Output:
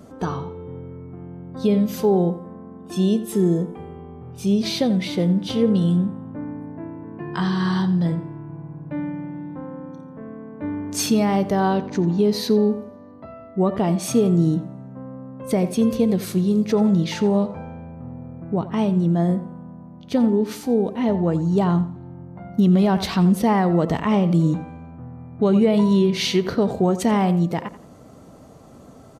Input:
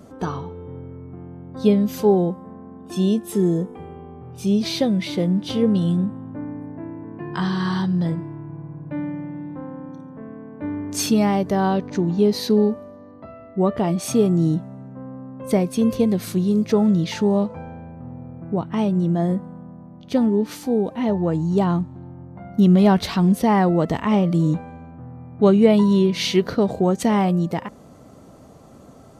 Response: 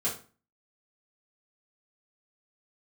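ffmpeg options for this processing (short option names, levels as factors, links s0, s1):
-filter_complex "[0:a]asplit=2[s0][s1];[s1]adelay=86,lowpass=f=4000:p=1,volume=0.2,asplit=2[s2][s3];[s3]adelay=86,lowpass=f=4000:p=1,volume=0.31,asplit=2[s4][s5];[s5]adelay=86,lowpass=f=4000:p=1,volume=0.31[s6];[s0][s2][s4][s6]amix=inputs=4:normalize=0,alimiter=limit=0.355:level=0:latency=1:release=69,asplit=2[s7][s8];[1:a]atrim=start_sample=2205[s9];[s8][s9]afir=irnorm=-1:irlink=0,volume=0.0473[s10];[s7][s10]amix=inputs=2:normalize=0"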